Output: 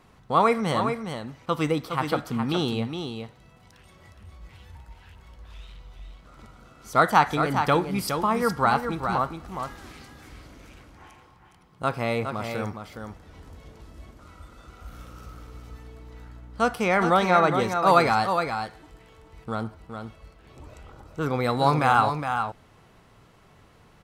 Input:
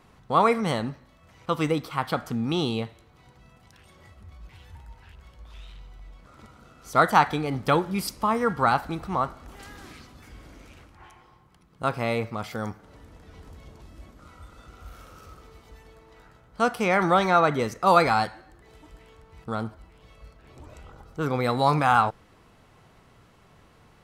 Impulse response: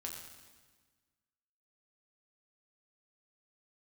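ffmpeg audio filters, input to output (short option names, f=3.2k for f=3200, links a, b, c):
-filter_complex "[0:a]asettb=1/sr,asplit=3[a][b][c];[a]atrim=end=14.884[d];[b]atrim=start=14.88:end=16.74,asetpts=PTS-STARTPTS,afade=t=in:d=0.004:c=qsin,afade=t=out:st=1.856:d=0.004:c=qsin,aeval=exprs='val(0)+0.00631*(sin(2*PI*60*n/s)+sin(2*PI*2*60*n/s)/2+sin(2*PI*3*60*n/s)/3+sin(2*PI*4*60*n/s)/4+sin(2*PI*5*60*n/s)/5)':c=same[e];[c]atrim=start=16.736[f];[d][e]acrossfade=d=0.004:c1=hsin:c2=qsin[g];[g][f]acrossfade=d=0.004:c1=qsin:c2=hsin,aecho=1:1:414:0.447"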